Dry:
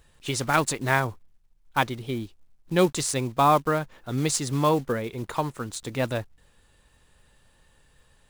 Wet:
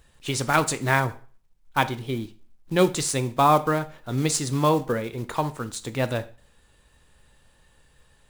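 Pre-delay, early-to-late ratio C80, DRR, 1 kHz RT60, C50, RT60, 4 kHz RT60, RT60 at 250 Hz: 5 ms, 21.5 dB, 11.5 dB, 0.40 s, 17.5 dB, 0.40 s, 0.40 s, 0.40 s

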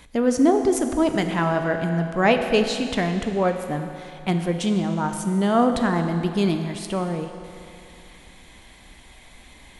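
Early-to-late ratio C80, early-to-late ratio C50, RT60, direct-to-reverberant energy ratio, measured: 8.0 dB, 7.0 dB, 2.6 s, 6.0 dB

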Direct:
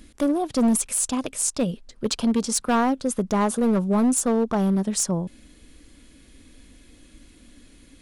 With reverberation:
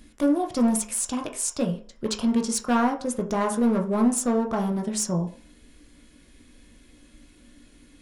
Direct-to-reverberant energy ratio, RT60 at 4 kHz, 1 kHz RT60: 2.0 dB, 0.45 s, 0.50 s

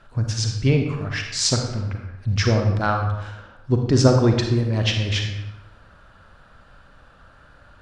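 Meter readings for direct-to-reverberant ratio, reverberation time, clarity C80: 3.0 dB, 1.0 s, 6.5 dB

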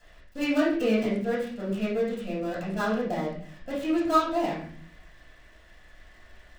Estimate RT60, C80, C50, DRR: 0.55 s, 7.5 dB, 3.5 dB, −10.0 dB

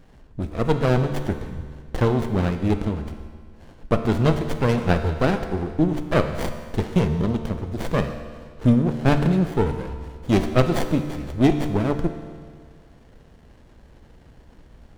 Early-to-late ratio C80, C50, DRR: 9.5 dB, 8.5 dB, 7.0 dB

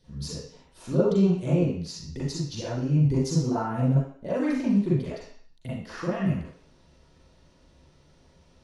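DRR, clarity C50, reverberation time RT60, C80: −11.0 dB, 0.5 dB, 0.55 s, 4.5 dB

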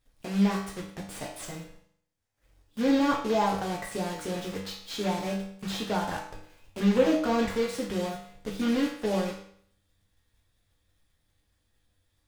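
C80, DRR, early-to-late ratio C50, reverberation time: 8.5 dB, −3.0 dB, 5.0 dB, 0.60 s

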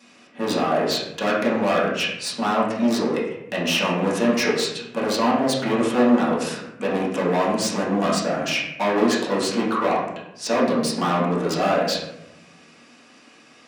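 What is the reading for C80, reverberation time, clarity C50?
6.0 dB, 0.85 s, 2.5 dB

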